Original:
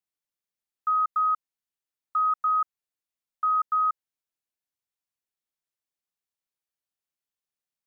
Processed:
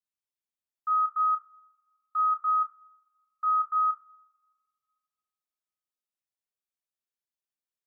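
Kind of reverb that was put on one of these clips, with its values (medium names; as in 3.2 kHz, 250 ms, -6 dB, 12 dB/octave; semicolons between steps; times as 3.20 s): two-slope reverb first 0.31 s, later 2 s, from -27 dB, DRR 2 dB; trim -8.5 dB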